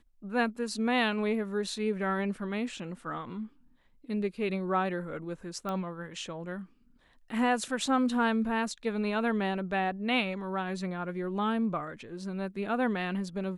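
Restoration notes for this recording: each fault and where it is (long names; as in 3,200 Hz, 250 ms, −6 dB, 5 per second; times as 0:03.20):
0:05.69: click −22 dBFS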